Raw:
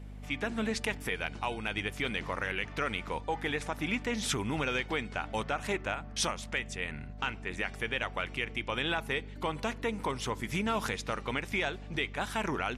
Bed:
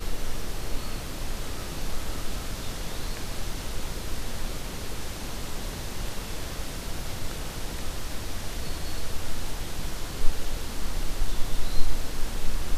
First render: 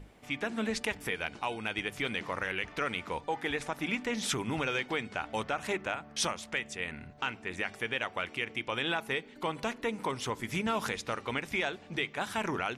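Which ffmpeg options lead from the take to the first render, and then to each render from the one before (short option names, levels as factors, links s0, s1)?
-af "bandreject=f=50:t=h:w=6,bandreject=f=100:t=h:w=6,bandreject=f=150:t=h:w=6,bandreject=f=200:t=h:w=6,bandreject=f=250:t=h:w=6"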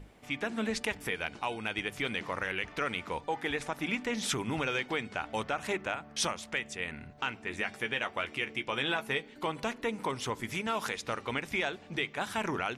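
-filter_complex "[0:a]asettb=1/sr,asplit=3[s0][s1][s2];[s0]atrim=end=7.444[s3];[s1]atrim=start=7.44:end=9.46,asetpts=PTS-STARTPTS,afade=t=in:d=0.004:c=qsin,afade=t=out:st=2.016:d=0.004:c=qsin,asplit=2[s4][s5];[s5]adelay=14,volume=0.398[s6];[s4][s6]amix=inputs=2:normalize=0,atrim=end_sample=89082[s7];[s2]atrim=start=9.456[s8];[s3][s7]acrossfade=d=0.004:c1=hsin:c2=qsin[s9];[s9][s8]acrossfade=d=0.004:c1=qsin:c2=hsin,asettb=1/sr,asplit=3[s10][s11][s12];[s10]atrim=end=10.534[s13];[s11]atrim=start=10.53:end=11.03,asetpts=PTS-STARTPTS,afade=t=in:d=0.004:c=qsin,afade=t=out:st=0.496:d=0.004:c=qsin,lowshelf=f=260:g=-8[s14];[s12]atrim=start=11.026[s15];[s13][s14]acrossfade=d=0.004:c1=hsin:c2=qsin[s16];[s16][s15]acrossfade=d=0.004:c1=qsin:c2=hsin"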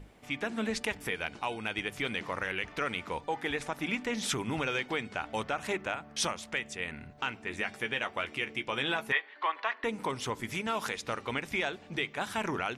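-filter_complex "[0:a]asettb=1/sr,asplit=3[s0][s1][s2];[s0]atrim=end=9.124[s3];[s1]atrim=start=9.12:end=9.84,asetpts=PTS-STARTPTS,afade=t=in:d=0.004:c=qsin,afade=t=out:st=0.716:d=0.004:c=qsin,highpass=f=460:w=0.5412,highpass=f=460:w=1.3066,equalizer=f=480:t=q:w=4:g=-9,equalizer=f=1100:t=q:w=4:g=8,equalizer=f=1800:t=q:w=4:g=10,lowpass=f=4000:w=0.5412,lowpass=f=4000:w=1.3066[s4];[s2]atrim=start=9.836[s5];[s3][s4]acrossfade=d=0.004:c1=hsin:c2=qsin[s6];[s6][s5]acrossfade=d=0.004:c1=qsin:c2=hsin"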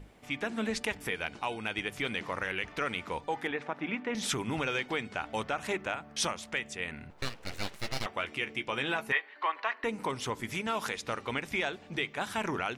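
-filter_complex "[0:a]asettb=1/sr,asplit=3[s0][s1][s2];[s0]atrim=end=3.474[s3];[s1]atrim=start=3.47:end=4.15,asetpts=PTS-STARTPTS,afade=t=in:d=0.004:c=qsin,afade=t=out:st=0.676:d=0.004:c=qsin,highpass=160,lowpass=2400[s4];[s2]atrim=start=4.146[s5];[s3][s4]acrossfade=d=0.004:c1=hsin:c2=qsin[s6];[s6][s5]acrossfade=d=0.004:c1=qsin:c2=hsin,asettb=1/sr,asplit=3[s7][s8][s9];[s7]atrim=end=7.104[s10];[s8]atrim=start=7.1:end=8.06,asetpts=PTS-STARTPTS,afade=t=in:d=0.004:c=qsin,afade=t=out:st=0.956:d=0.004:c=qsin,aeval=exprs='abs(val(0))':c=same[s11];[s9]atrim=start=8.056[s12];[s10][s11]acrossfade=d=0.004:c1=hsin:c2=qsin[s13];[s13][s12]acrossfade=d=0.004:c1=qsin:c2=hsin,asettb=1/sr,asplit=3[s14][s15][s16];[s14]atrim=end=8.724[s17];[s15]atrim=start=8.72:end=10.07,asetpts=PTS-STARTPTS,afade=t=in:d=0.004:c=qsin,afade=t=out:st=1.346:d=0.004:c=qsin,bandreject=f=3400:w=12[s18];[s16]atrim=start=10.066[s19];[s17][s18]acrossfade=d=0.004:c1=hsin:c2=qsin[s20];[s20][s19]acrossfade=d=0.004:c1=qsin:c2=hsin"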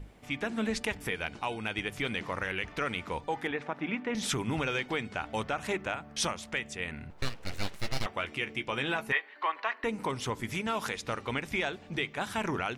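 -af "lowshelf=f=150:g=6.5"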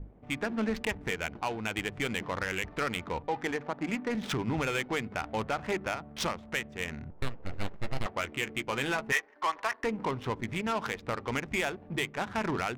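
-filter_complex "[0:a]asplit=2[s0][s1];[s1]asoftclip=type=tanh:threshold=0.0251,volume=0.282[s2];[s0][s2]amix=inputs=2:normalize=0,adynamicsmooth=sensitivity=5:basefreq=670"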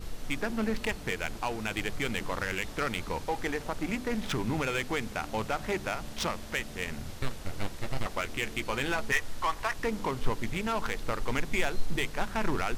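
-filter_complex "[1:a]volume=0.316[s0];[0:a][s0]amix=inputs=2:normalize=0"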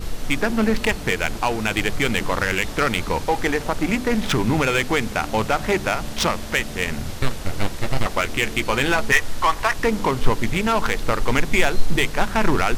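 -af "volume=3.55"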